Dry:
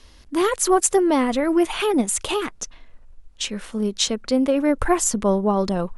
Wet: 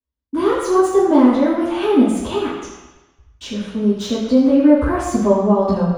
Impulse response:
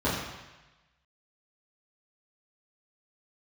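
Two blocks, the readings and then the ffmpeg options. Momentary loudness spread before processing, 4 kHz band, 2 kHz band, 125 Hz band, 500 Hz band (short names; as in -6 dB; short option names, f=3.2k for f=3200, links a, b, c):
11 LU, -4.5 dB, -1.0 dB, +6.5 dB, +4.5 dB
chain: -filter_complex "[0:a]agate=range=-42dB:threshold=-37dB:ratio=16:detection=peak,acrossover=split=150|1100[a][b][c];[c]asoftclip=type=tanh:threshold=-18dB[d];[a][b][d]amix=inputs=3:normalize=0[e];[1:a]atrim=start_sample=2205[f];[e][f]afir=irnorm=-1:irlink=0,volume=-11.5dB"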